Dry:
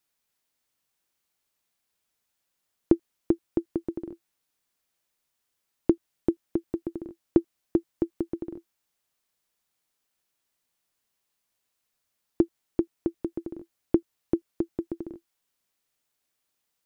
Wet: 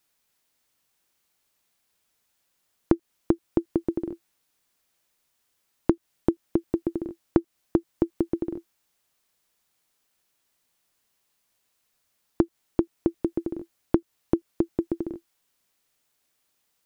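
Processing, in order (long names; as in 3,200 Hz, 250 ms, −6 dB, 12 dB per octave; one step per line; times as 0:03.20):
downward compressor 3 to 1, threshold −24 dBFS, peak gain reduction 8.5 dB
level +6 dB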